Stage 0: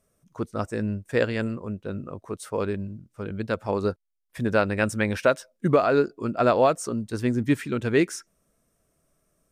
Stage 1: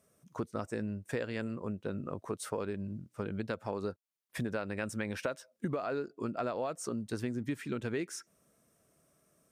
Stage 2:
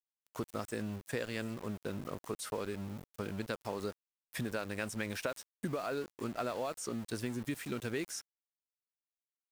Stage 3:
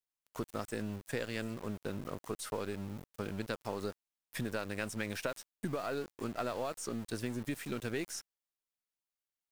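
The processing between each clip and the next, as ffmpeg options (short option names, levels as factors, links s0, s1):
-filter_complex "[0:a]highpass=100,asplit=2[s0][s1];[s1]alimiter=limit=0.168:level=0:latency=1:release=32,volume=0.794[s2];[s0][s2]amix=inputs=2:normalize=0,acompressor=threshold=0.0355:ratio=6,volume=0.631"
-filter_complex "[0:a]aemphasis=mode=production:type=75fm,aeval=exprs='val(0)*gte(abs(val(0)),0.00668)':c=same,acrossover=split=5200[s0][s1];[s1]acompressor=threshold=0.00631:ratio=4:attack=1:release=60[s2];[s0][s2]amix=inputs=2:normalize=0,volume=0.841"
-af "aeval=exprs='if(lt(val(0),0),0.708*val(0),val(0))':c=same,volume=1.12"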